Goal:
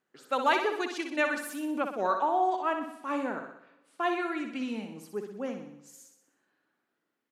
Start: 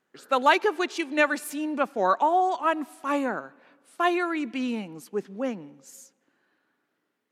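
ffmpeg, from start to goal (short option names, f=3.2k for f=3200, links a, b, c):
-filter_complex "[0:a]asettb=1/sr,asplit=3[a][b][c];[a]atrim=end=2.114[d];[b]atrim=start=2.11:end=4.23,asetpts=PTS-STARTPTS,afade=t=in:d=0.004:c=qsin,afade=t=out:st=2.116:d=0.004:c=qsin,highshelf=f=7.6k:g=-9.5[e];[c]atrim=start=4.226[f];[d][e]acrossfade=d=0.004:c1=hsin:c2=qsin[g];[g][f]acrossfade=d=0.004:c1=qsin:c2=hsin,aecho=1:1:62|124|186|248|310|372|434:0.447|0.241|0.13|0.0703|0.038|0.0205|0.0111,volume=-6dB"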